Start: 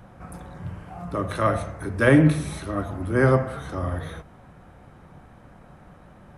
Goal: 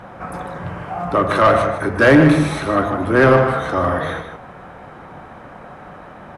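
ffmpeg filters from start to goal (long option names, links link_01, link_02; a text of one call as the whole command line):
ffmpeg -i in.wav -filter_complex "[0:a]acontrast=33,asplit=2[link_01][link_02];[link_02]highpass=frequency=720:poles=1,volume=18dB,asoftclip=type=tanh:threshold=-2dB[link_03];[link_01][link_03]amix=inputs=2:normalize=0,lowpass=frequency=1600:poles=1,volume=-6dB,asplit=2[link_04][link_05];[link_05]adelay=151.6,volume=-8dB,highshelf=frequency=4000:gain=-3.41[link_06];[link_04][link_06]amix=inputs=2:normalize=0" out.wav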